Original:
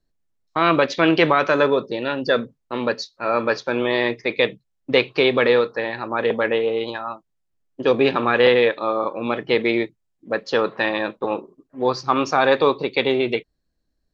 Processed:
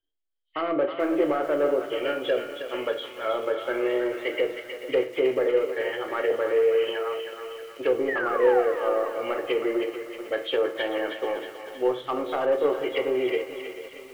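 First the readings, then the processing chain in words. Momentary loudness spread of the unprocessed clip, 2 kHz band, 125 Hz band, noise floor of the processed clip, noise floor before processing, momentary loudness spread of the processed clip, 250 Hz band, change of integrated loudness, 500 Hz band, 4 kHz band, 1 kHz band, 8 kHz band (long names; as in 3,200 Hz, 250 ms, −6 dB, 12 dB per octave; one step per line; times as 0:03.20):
10 LU, −9.5 dB, below −15 dB, −45 dBFS, −73 dBFS, 10 LU, −7.0 dB, −6.0 dB, −4.0 dB, −9.5 dB, −8.5 dB, can't be measured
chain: hearing-aid frequency compression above 1,800 Hz 1.5 to 1
thirty-one-band graphic EQ 160 Hz −5 dB, 400 Hz −8 dB, 800 Hz −3 dB, 2,000 Hz +3 dB, 3,150 Hz +11 dB
treble cut that deepens with the level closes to 860 Hz, closed at −16.5 dBFS
soft clipping −12.5 dBFS, distortion −19 dB
sound drawn into the spectrogram fall, 0:08.08–0:08.63, 670–2,000 Hz −25 dBFS
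feedback echo with a high-pass in the loop 317 ms, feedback 57%, high-pass 1,100 Hz, level −6 dB
downsampling to 11,025 Hz
notch filter 1,000 Hz, Q 7.7
noise reduction from a noise print of the clip's start 9 dB
low shelf with overshoot 280 Hz −8.5 dB, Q 3
rectangular room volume 44 cubic metres, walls mixed, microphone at 0.32 metres
feedback echo at a low word length 438 ms, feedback 55%, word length 6 bits, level −13 dB
level −5.5 dB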